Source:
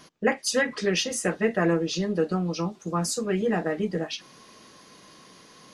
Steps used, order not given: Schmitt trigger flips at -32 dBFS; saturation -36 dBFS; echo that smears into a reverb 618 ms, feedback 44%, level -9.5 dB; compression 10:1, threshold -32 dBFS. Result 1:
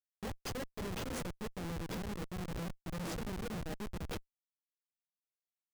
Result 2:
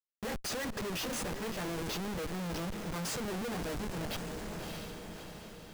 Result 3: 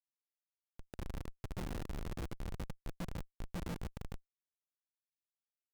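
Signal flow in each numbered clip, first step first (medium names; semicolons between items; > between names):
compression > echo that smears into a reverb > Schmitt trigger > saturation; Schmitt trigger > echo that smears into a reverb > saturation > compression; saturation > echo that smears into a reverb > Schmitt trigger > compression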